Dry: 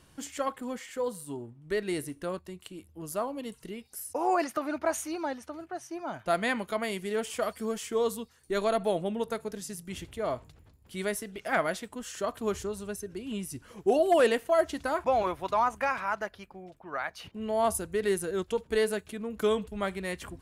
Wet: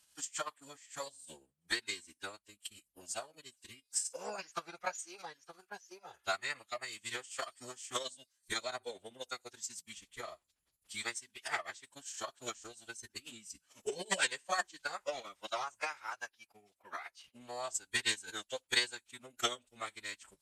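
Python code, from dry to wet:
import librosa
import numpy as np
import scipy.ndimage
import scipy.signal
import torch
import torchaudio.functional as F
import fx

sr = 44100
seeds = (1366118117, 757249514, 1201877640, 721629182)

y = fx.transient(x, sr, attack_db=11, sustain_db=-10)
y = fx.pitch_keep_formants(y, sr, semitones=-10.0)
y = scipy.signal.lfilter([1.0, -0.97], [1.0], y)
y = F.gain(torch.from_numpy(y), 2.0).numpy()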